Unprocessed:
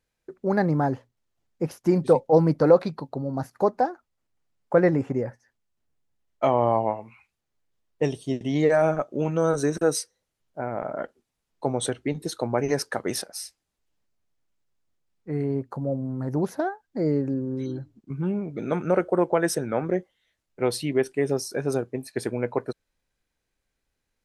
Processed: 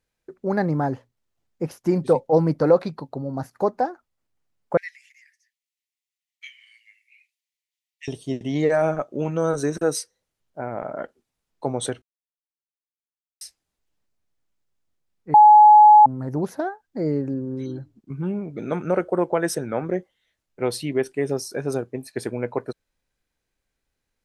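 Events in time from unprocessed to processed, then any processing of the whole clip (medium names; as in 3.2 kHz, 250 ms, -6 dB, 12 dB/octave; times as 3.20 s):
4.77–8.08 s: steep high-pass 1.9 kHz 72 dB/octave
12.02–13.41 s: mute
15.34–16.06 s: bleep 845 Hz -6.5 dBFS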